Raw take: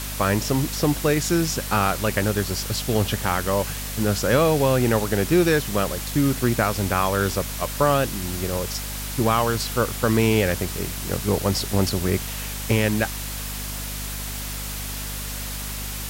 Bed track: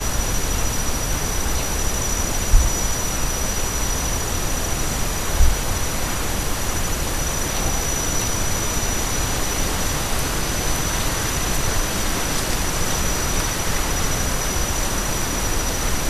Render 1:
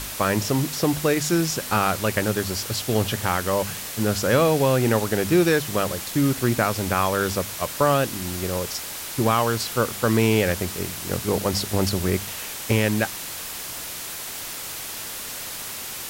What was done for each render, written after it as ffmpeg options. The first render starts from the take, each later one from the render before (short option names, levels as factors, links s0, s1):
-af "bandreject=f=50:t=h:w=4,bandreject=f=100:t=h:w=4,bandreject=f=150:t=h:w=4,bandreject=f=200:t=h:w=4,bandreject=f=250:t=h:w=4"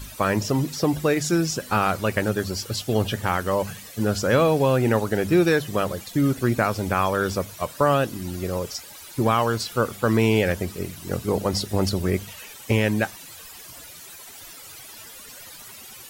-af "afftdn=nr=14:nf=-34"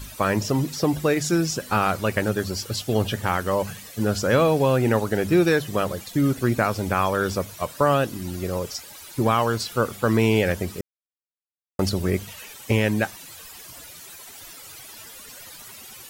-filter_complex "[0:a]asplit=3[s0][s1][s2];[s0]atrim=end=10.81,asetpts=PTS-STARTPTS,afade=t=out:st=10.806:d=0.004:c=hsin[s3];[s1]atrim=start=10.81:end=11.79,asetpts=PTS-STARTPTS,volume=0[s4];[s2]atrim=start=11.79,asetpts=PTS-STARTPTS,afade=t=in:d=0.004:c=hsin[s5];[s3][s4][s5]concat=n=3:v=0:a=1"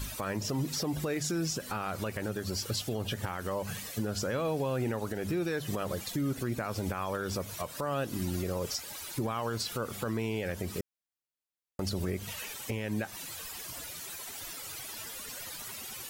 -af "acompressor=threshold=0.0708:ratio=4,alimiter=limit=0.0668:level=0:latency=1:release=146"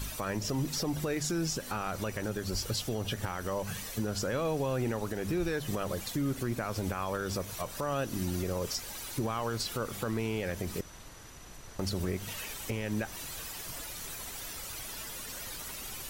-filter_complex "[1:a]volume=0.0398[s0];[0:a][s0]amix=inputs=2:normalize=0"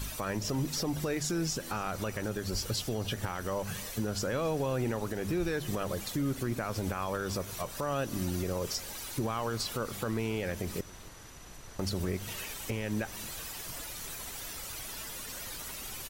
-af "aecho=1:1:273:0.0891"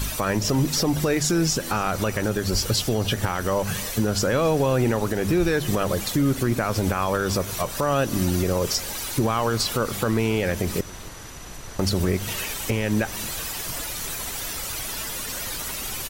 -af "volume=3.35"